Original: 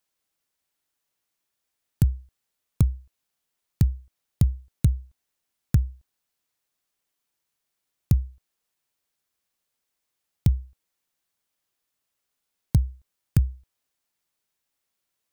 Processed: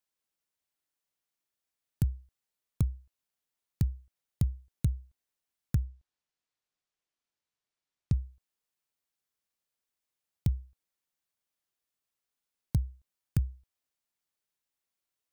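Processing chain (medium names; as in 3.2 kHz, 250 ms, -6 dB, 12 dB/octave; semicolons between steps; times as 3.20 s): 5.84–8.19 s: low-pass 6.4 kHz 12 dB/octave; trim -8 dB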